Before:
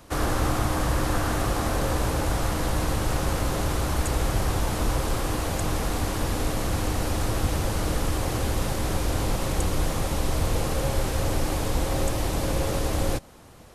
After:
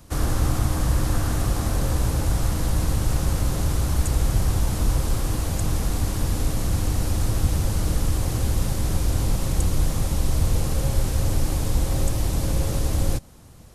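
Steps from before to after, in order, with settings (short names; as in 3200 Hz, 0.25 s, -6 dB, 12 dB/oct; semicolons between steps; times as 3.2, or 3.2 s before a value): tone controls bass +10 dB, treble +7 dB; gain -5 dB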